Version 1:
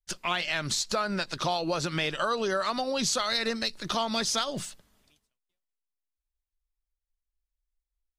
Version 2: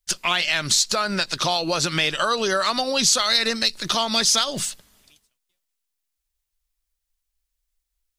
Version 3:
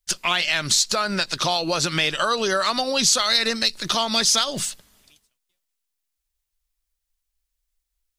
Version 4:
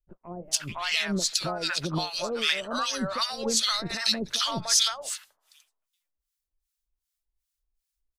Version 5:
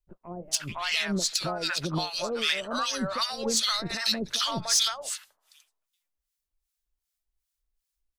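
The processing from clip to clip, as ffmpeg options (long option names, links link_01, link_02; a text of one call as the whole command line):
ffmpeg -i in.wav -filter_complex "[0:a]highshelf=frequency=2100:gain=9,asplit=2[link_01][link_02];[link_02]alimiter=limit=-15.5dB:level=0:latency=1:release=255,volume=-3dB[link_03];[link_01][link_03]amix=inputs=2:normalize=0" out.wav
ffmpeg -i in.wav -af anull out.wav
ffmpeg -i in.wav -filter_complex "[0:a]acrossover=split=650|2300[link_01][link_02][link_03];[link_03]adelay=440[link_04];[link_02]adelay=510[link_05];[link_01][link_05][link_04]amix=inputs=3:normalize=0,acrossover=split=960[link_06][link_07];[link_06]aeval=exprs='val(0)*(1-1/2+1/2*cos(2*PI*2.6*n/s))':channel_layout=same[link_08];[link_07]aeval=exprs='val(0)*(1-1/2-1/2*cos(2*PI*2.6*n/s))':channel_layout=same[link_09];[link_08][link_09]amix=inputs=2:normalize=0" out.wav
ffmpeg -i in.wav -af "asoftclip=type=tanh:threshold=-14dB" out.wav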